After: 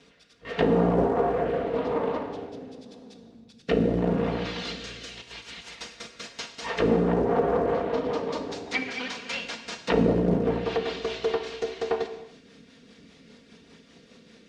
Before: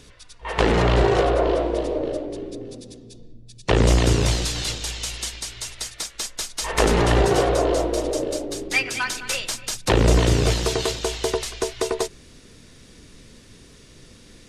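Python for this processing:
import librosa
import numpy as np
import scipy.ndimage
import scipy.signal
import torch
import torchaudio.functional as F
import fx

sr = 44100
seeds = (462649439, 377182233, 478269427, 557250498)

y = fx.lower_of_two(x, sr, delay_ms=4.3)
y = fx.over_compress(y, sr, threshold_db=-37.0, ratio=-0.5, at=(5.13, 5.76))
y = fx.rotary_switch(y, sr, hz=0.85, then_hz=5.0, switch_at_s=5.99)
y = fx.env_lowpass_down(y, sr, base_hz=760.0, full_db=-17.0)
y = fx.quant_float(y, sr, bits=4)
y = fx.bandpass_edges(y, sr, low_hz=130.0, high_hz=4100.0)
y = fx.rev_gated(y, sr, seeds[0], gate_ms=350, shape='falling', drr_db=7.0)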